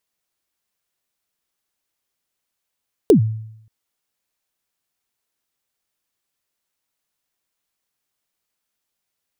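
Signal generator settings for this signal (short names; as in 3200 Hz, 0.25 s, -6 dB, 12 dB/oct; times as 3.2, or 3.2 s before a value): kick drum length 0.58 s, from 480 Hz, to 110 Hz, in 0.104 s, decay 0.76 s, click on, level -5 dB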